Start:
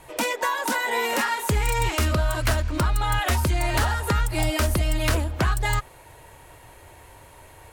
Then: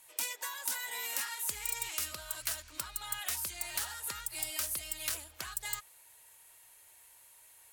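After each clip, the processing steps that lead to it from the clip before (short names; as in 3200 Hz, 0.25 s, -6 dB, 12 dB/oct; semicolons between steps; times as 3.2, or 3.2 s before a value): pre-emphasis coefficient 0.97; gain -3.5 dB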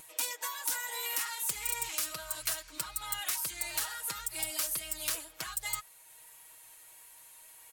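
wow and flutter 22 cents; upward compressor, threshold -51 dBFS; comb 6.3 ms, depth 82%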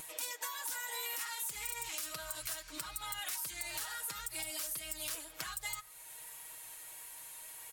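limiter -23.5 dBFS, peak gain reduction 8.5 dB; compressor 2.5:1, threshold -46 dBFS, peak gain reduction 10 dB; shoebox room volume 2600 m³, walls furnished, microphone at 0.36 m; gain +5 dB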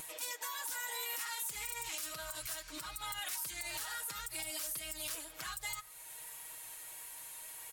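limiter -30 dBFS, peak gain reduction 8 dB; gain +1 dB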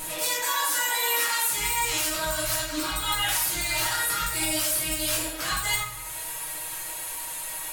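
shoebox room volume 210 m³, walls mixed, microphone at 2.9 m; gain +6.5 dB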